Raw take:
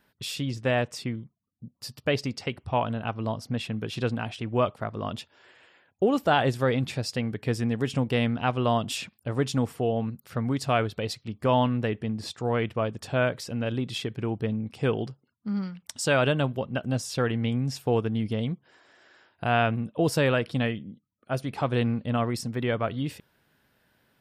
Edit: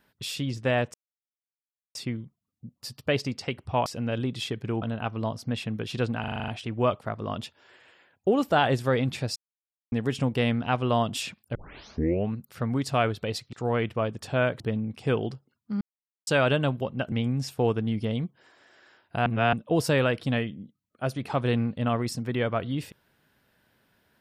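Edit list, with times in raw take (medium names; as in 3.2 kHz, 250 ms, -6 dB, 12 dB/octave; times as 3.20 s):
0.94 s: insert silence 1.01 s
4.23 s: stutter 0.04 s, 8 plays
7.11–7.67 s: mute
9.30 s: tape start 0.75 s
11.28–12.33 s: delete
13.40–14.36 s: move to 2.85 s
15.57–16.03 s: mute
16.88–17.40 s: delete
19.54–19.81 s: reverse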